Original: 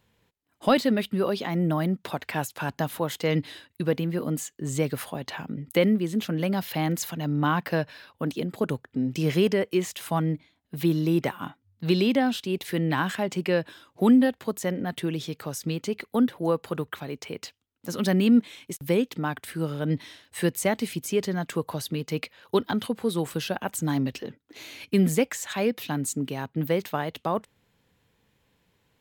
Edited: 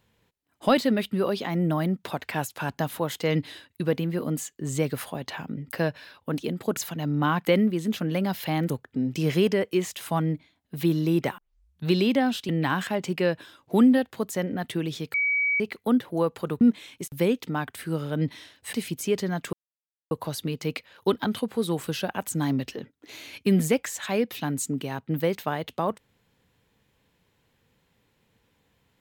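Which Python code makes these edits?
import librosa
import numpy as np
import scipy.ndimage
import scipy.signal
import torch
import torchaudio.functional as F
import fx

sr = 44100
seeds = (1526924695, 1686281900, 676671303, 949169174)

y = fx.edit(x, sr, fx.swap(start_s=5.73, length_s=1.25, other_s=7.66, other_length_s=1.04),
    fx.tape_start(start_s=11.38, length_s=0.49),
    fx.cut(start_s=12.49, length_s=0.28),
    fx.bleep(start_s=15.42, length_s=0.46, hz=2270.0, db=-21.0),
    fx.cut(start_s=16.89, length_s=1.41),
    fx.cut(start_s=20.42, length_s=0.36),
    fx.insert_silence(at_s=21.58, length_s=0.58), tone=tone)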